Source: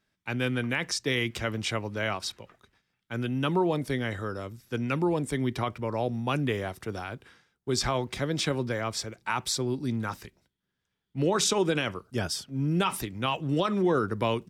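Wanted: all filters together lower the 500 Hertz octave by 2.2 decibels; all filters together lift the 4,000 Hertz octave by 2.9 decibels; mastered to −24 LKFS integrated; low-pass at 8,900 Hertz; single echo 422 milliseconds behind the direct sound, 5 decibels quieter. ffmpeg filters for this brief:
ffmpeg -i in.wav -af "lowpass=8900,equalizer=frequency=500:width_type=o:gain=-3,equalizer=frequency=4000:width_type=o:gain=4,aecho=1:1:422:0.562,volume=4.5dB" out.wav

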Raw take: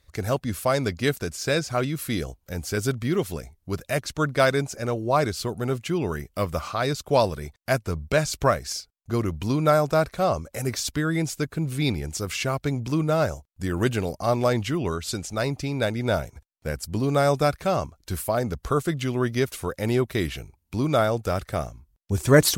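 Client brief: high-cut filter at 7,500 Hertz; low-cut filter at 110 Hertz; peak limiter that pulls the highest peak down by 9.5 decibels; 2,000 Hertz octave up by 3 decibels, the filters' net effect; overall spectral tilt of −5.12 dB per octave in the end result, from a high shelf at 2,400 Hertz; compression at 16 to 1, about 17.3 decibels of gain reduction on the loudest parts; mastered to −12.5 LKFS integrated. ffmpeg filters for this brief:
ffmpeg -i in.wav -af "highpass=110,lowpass=7500,equalizer=frequency=2000:width_type=o:gain=7,highshelf=frequency=2400:gain=-6.5,acompressor=threshold=-26dB:ratio=16,volume=22dB,alimiter=limit=0dB:level=0:latency=1" out.wav

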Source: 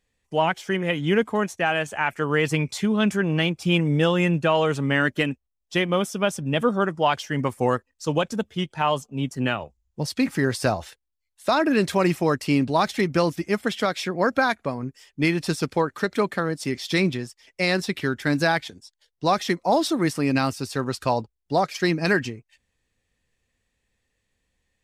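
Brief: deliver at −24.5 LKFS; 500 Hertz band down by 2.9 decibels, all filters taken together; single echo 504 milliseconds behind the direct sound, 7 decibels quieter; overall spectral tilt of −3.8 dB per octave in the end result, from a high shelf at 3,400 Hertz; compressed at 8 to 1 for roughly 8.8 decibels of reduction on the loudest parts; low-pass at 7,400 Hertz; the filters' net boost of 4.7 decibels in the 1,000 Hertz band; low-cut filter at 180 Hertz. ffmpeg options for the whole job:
ffmpeg -i in.wav -af "highpass=180,lowpass=7400,equalizer=frequency=500:width_type=o:gain=-6,equalizer=frequency=1000:width_type=o:gain=7,highshelf=frequency=3400:gain=8,acompressor=threshold=-22dB:ratio=8,aecho=1:1:504:0.447,volume=3dB" out.wav

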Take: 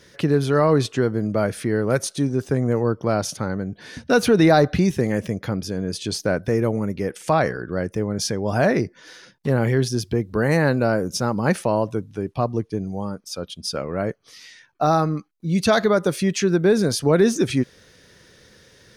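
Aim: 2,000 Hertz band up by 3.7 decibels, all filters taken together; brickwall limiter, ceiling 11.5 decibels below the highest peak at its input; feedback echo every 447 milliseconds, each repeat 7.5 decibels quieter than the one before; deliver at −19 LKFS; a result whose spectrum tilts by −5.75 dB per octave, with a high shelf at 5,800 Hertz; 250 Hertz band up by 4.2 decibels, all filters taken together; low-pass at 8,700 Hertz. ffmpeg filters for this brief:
ffmpeg -i in.wav -af "lowpass=8700,equalizer=frequency=250:width_type=o:gain=5.5,equalizer=frequency=2000:width_type=o:gain=5.5,highshelf=frequency=5800:gain=-5.5,alimiter=limit=-14dB:level=0:latency=1,aecho=1:1:447|894|1341|1788|2235:0.422|0.177|0.0744|0.0312|0.0131,volume=5.5dB" out.wav

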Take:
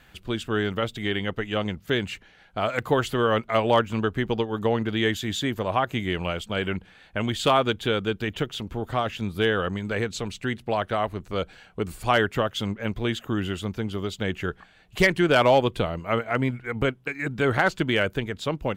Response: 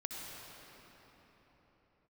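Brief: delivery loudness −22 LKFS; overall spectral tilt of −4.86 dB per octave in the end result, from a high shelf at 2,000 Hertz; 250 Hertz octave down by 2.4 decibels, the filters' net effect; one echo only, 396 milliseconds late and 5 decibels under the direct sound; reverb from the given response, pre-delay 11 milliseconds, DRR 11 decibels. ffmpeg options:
-filter_complex "[0:a]equalizer=frequency=250:width_type=o:gain=-3,highshelf=frequency=2000:gain=-8.5,aecho=1:1:396:0.562,asplit=2[link_01][link_02];[1:a]atrim=start_sample=2205,adelay=11[link_03];[link_02][link_03]afir=irnorm=-1:irlink=0,volume=-11.5dB[link_04];[link_01][link_04]amix=inputs=2:normalize=0,volume=4dB"

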